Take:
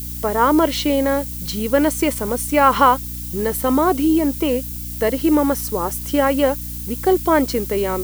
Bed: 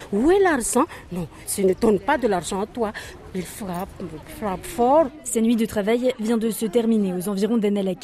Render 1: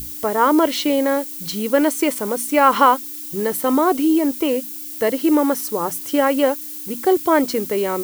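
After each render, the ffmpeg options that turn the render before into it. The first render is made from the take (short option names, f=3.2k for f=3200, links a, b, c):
-af "bandreject=f=60:t=h:w=6,bandreject=f=120:t=h:w=6,bandreject=f=180:t=h:w=6,bandreject=f=240:t=h:w=6"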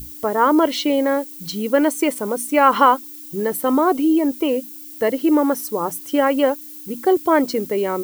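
-af "afftdn=nr=7:nf=-32"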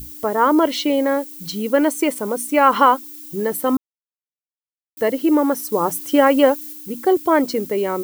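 -filter_complex "[0:a]asplit=5[a][b][c][d][e];[a]atrim=end=3.77,asetpts=PTS-STARTPTS,afade=t=out:st=3.766:d=0.004:c=hsin[f];[b]atrim=start=3.77:end=4.97,asetpts=PTS-STARTPTS,volume=0[g];[c]atrim=start=4.97:end=5.722,asetpts=PTS-STARTPTS,afade=t=in:d=0.004:c=hsin[h];[d]atrim=start=5.718:end=6.732,asetpts=PTS-STARTPTS,volume=3.5dB[i];[e]atrim=start=6.728[j];[f][g][h]concat=n=3:v=0:a=1[k];[k][i]acrossfade=d=0.004:c1=hsin:c2=hsin[l];[l][j]acrossfade=d=0.004:c1=hsin:c2=hsin"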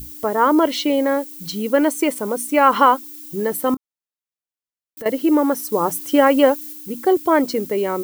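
-filter_complex "[0:a]asettb=1/sr,asplit=3[a][b][c];[a]atrim=end=3.744[d];[b]atrim=start=3.74:end=5.06,asetpts=PTS-STARTPTS,afade=t=in:d=0.004:c=qsin,afade=t=out:st=1.316:d=0.004:c=qsin,acompressor=threshold=-30dB:ratio=6:attack=3.2:release=140:knee=1:detection=peak[e];[c]atrim=start=5.056[f];[d][e]acrossfade=d=0.004:c1=hsin:c2=qsin[g];[g][f]acrossfade=d=0.004:c1=qsin:c2=hsin"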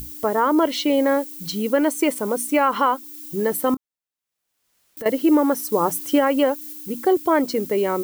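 -af "alimiter=limit=-8.5dB:level=0:latency=1:release=366,acompressor=mode=upward:threshold=-39dB:ratio=2.5"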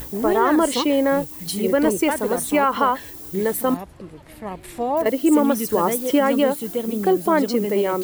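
-filter_complex "[1:a]volume=-5.5dB[a];[0:a][a]amix=inputs=2:normalize=0"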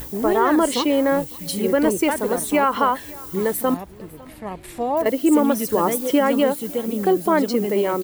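-af "aecho=1:1:553:0.0708"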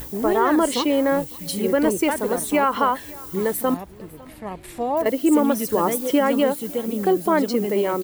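-af "volume=-1dB"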